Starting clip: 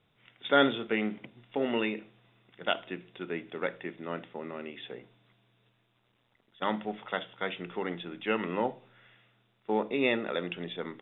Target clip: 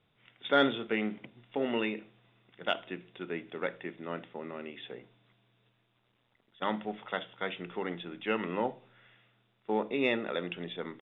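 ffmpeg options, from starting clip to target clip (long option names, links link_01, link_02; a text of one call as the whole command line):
ffmpeg -i in.wav -af "aresample=11025,aresample=44100,acontrast=37,volume=-7dB" out.wav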